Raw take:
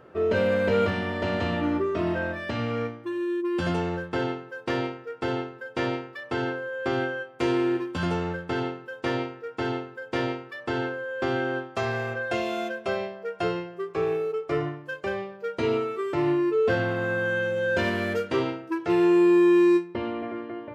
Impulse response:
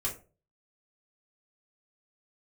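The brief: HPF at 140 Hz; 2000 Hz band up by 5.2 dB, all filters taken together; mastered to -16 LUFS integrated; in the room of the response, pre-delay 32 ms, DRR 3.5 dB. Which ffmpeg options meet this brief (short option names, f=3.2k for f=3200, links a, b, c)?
-filter_complex "[0:a]highpass=140,equalizer=f=2k:t=o:g=7,asplit=2[a][b];[1:a]atrim=start_sample=2205,adelay=32[c];[b][c]afir=irnorm=-1:irlink=0,volume=-7.5dB[d];[a][d]amix=inputs=2:normalize=0,volume=7dB"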